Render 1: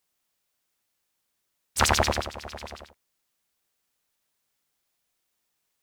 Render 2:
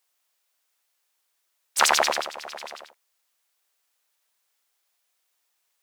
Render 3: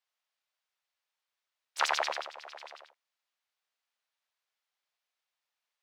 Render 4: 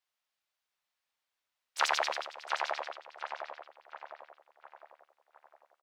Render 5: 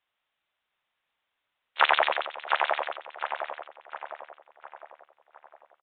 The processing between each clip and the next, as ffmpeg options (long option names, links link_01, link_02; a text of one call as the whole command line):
ffmpeg -i in.wav -af "highpass=560,volume=3.5dB" out.wav
ffmpeg -i in.wav -filter_complex "[0:a]acrossover=split=400 5400:gain=0.0708 1 0.178[link_01][link_02][link_03];[link_01][link_02][link_03]amix=inputs=3:normalize=0,volume=-8.5dB" out.wav
ffmpeg -i in.wav -filter_complex "[0:a]asplit=2[link_01][link_02];[link_02]adelay=707,lowpass=frequency=2200:poles=1,volume=-3dB,asplit=2[link_03][link_04];[link_04]adelay=707,lowpass=frequency=2200:poles=1,volume=0.5,asplit=2[link_05][link_06];[link_06]adelay=707,lowpass=frequency=2200:poles=1,volume=0.5,asplit=2[link_07][link_08];[link_08]adelay=707,lowpass=frequency=2200:poles=1,volume=0.5,asplit=2[link_09][link_10];[link_10]adelay=707,lowpass=frequency=2200:poles=1,volume=0.5,asplit=2[link_11][link_12];[link_12]adelay=707,lowpass=frequency=2200:poles=1,volume=0.5,asplit=2[link_13][link_14];[link_14]adelay=707,lowpass=frequency=2200:poles=1,volume=0.5[link_15];[link_01][link_03][link_05][link_07][link_09][link_11][link_13][link_15]amix=inputs=8:normalize=0" out.wav
ffmpeg -i in.wav -af "aresample=8000,aresample=44100,volume=8dB" out.wav